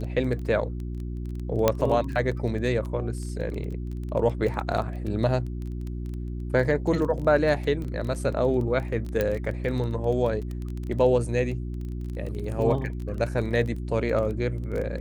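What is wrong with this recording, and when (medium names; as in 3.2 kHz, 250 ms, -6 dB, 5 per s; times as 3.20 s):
crackle 16 per s -31 dBFS
hum 60 Hz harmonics 6 -32 dBFS
1.68 s: pop -6 dBFS
7.84–7.85 s: dropout 7.1 ms
9.21 s: pop -12 dBFS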